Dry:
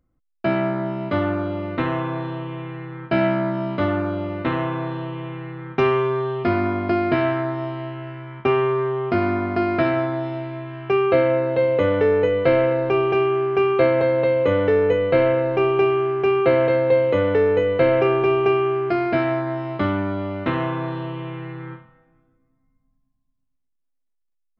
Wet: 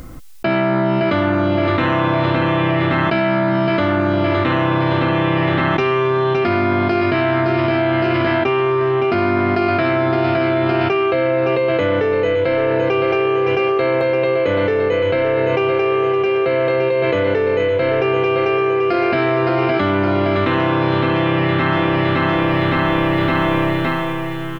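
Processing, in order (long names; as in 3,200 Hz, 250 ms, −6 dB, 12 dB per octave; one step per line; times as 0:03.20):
high-shelf EQ 2,000 Hz +8 dB
repeating echo 564 ms, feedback 54%, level −8.5 dB
envelope flattener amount 100%
level −4.5 dB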